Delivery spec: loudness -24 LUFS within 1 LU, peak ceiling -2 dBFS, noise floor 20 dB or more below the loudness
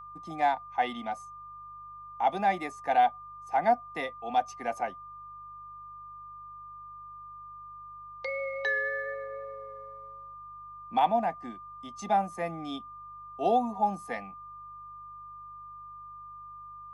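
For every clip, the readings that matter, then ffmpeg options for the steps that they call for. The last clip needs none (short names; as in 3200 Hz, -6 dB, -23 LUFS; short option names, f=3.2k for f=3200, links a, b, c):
hum 50 Hz; harmonics up to 150 Hz; hum level -61 dBFS; steady tone 1200 Hz; tone level -43 dBFS; loudness -30.5 LUFS; peak -12.5 dBFS; loudness target -24.0 LUFS
-> -af "bandreject=f=50:t=h:w=4,bandreject=f=100:t=h:w=4,bandreject=f=150:t=h:w=4"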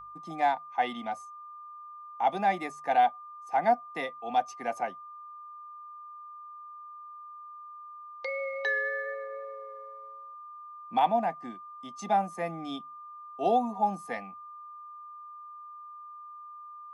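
hum none; steady tone 1200 Hz; tone level -43 dBFS
-> -af "bandreject=f=1.2k:w=30"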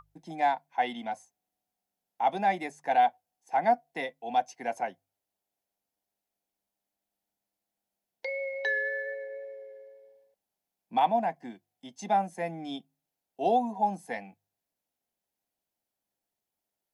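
steady tone none; loudness -30.0 LUFS; peak -12.5 dBFS; loudness target -24.0 LUFS
-> -af "volume=6dB"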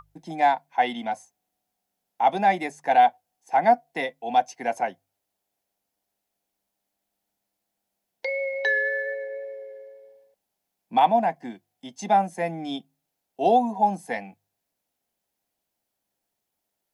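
loudness -24.0 LUFS; peak -6.5 dBFS; noise floor -82 dBFS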